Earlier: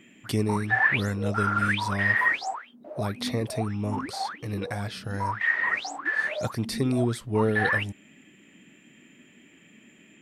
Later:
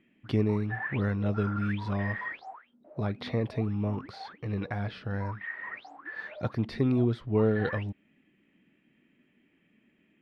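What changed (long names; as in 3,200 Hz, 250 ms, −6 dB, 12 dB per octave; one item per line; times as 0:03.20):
background −11.0 dB
master: add high-frequency loss of the air 320 metres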